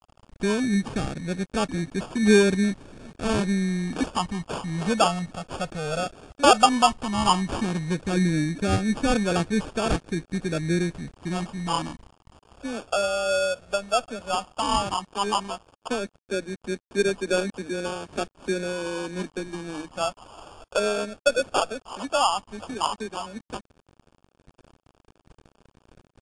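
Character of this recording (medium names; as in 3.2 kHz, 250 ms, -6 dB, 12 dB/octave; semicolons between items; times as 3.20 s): a quantiser's noise floor 8-bit, dither none; phasing stages 12, 0.13 Hz, lowest notch 320–1200 Hz; aliases and images of a low sample rate 2 kHz, jitter 0%; AAC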